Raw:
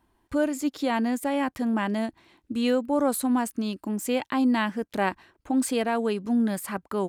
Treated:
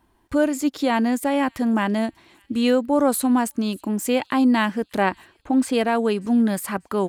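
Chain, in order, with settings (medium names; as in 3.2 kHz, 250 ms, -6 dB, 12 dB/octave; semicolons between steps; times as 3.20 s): 5.01–5.72 s: treble shelf 9.1 kHz -> 4.8 kHz -10.5 dB; on a send: feedback echo behind a high-pass 590 ms, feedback 41%, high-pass 2.8 kHz, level -23 dB; on the sum: trim +5 dB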